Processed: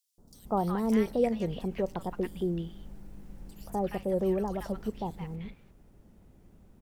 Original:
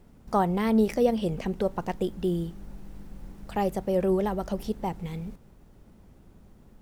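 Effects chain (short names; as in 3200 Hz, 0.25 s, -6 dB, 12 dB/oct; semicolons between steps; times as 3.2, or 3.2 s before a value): three bands offset in time highs, lows, mids 0.18/0.35 s, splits 1200/4100 Hz; gain -3.5 dB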